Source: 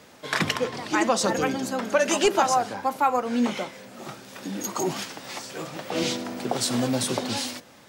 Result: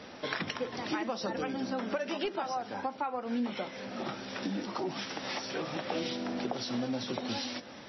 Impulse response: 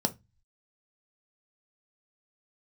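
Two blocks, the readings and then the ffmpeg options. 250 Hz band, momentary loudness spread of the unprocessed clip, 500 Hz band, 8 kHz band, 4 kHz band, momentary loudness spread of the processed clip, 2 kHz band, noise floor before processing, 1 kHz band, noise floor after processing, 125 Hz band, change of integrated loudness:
−7.0 dB, 14 LU, −9.5 dB, −18.5 dB, −8.0 dB, 4 LU, −9.0 dB, −51 dBFS, −10.5 dB, −48 dBFS, −9.0 dB, −9.5 dB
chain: -filter_complex "[0:a]acompressor=threshold=-36dB:ratio=6,asplit=2[link_01][link_02];[1:a]atrim=start_sample=2205,atrim=end_sample=4410[link_03];[link_02][link_03]afir=irnorm=-1:irlink=0,volume=-24dB[link_04];[link_01][link_04]amix=inputs=2:normalize=0,volume=3dB" -ar 22050 -c:a libmp3lame -b:a 24k

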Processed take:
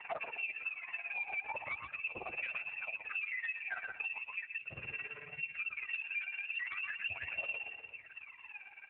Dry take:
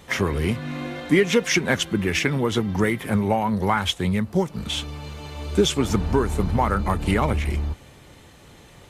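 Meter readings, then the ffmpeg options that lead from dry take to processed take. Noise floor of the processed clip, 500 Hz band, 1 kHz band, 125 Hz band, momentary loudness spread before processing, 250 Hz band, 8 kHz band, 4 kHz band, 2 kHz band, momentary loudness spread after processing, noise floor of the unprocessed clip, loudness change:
−56 dBFS, −28.5 dB, −21.5 dB, −37.5 dB, 9 LU, below −40 dB, below −40 dB, −23.0 dB, −8.5 dB, 7 LU, −48 dBFS, −16.5 dB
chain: -filter_complex "[0:a]tremolo=f=18:d=0.82,lowpass=frequency=2400:width_type=q:width=0.5098,lowpass=frequency=2400:width_type=q:width=0.6013,lowpass=frequency=2400:width_type=q:width=0.9,lowpass=frequency=2400:width_type=q:width=2.563,afreqshift=-2800,lowshelf=frequency=370:gain=-7.5,bandreject=frequency=60:width_type=h:width=6,bandreject=frequency=120:width_type=h:width=6,bandreject=frequency=180:width_type=h:width=6,bandreject=frequency=240:width_type=h:width=6,bandreject=frequency=300:width_type=h:width=6,aphaser=in_gain=1:out_gain=1:delay=1.3:decay=0.79:speed=0.4:type=sinusoidal,volume=18dB,asoftclip=hard,volume=-18dB,asplit=2[link_01][link_02];[link_02]adelay=123,lowpass=frequency=1200:poles=1,volume=-3.5dB,asplit=2[link_03][link_04];[link_04]adelay=123,lowpass=frequency=1200:poles=1,volume=0.34,asplit=2[link_05][link_06];[link_06]adelay=123,lowpass=frequency=1200:poles=1,volume=0.34,asplit=2[link_07][link_08];[link_08]adelay=123,lowpass=frequency=1200:poles=1,volume=0.34[link_09];[link_03][link_05][link_07][link_09]amix=inputs=4:normalize=0[link_10];[link_01][link_10]amix=inputs=2:normalize=0,asubboost=boost=8:cutoff=91,acompressor=threshold=-35dB:ratio=5,flanger=delay=1:depth=1.7:regen=34:speed=1.1:shape=triangular" -ar 8000 -c:a libopencore_amrnb -b:a 12200

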